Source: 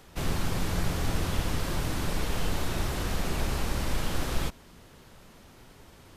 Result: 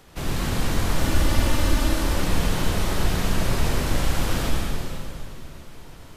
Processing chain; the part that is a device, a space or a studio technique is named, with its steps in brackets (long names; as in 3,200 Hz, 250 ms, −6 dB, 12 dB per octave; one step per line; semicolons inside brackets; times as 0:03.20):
0:00.88–0:01.89: comb filter 3.4 ms
stairwell (convolution reverb RT60 2.7 s, pre-delay 59 ms, DRR −3 dB)
level +1.5 dB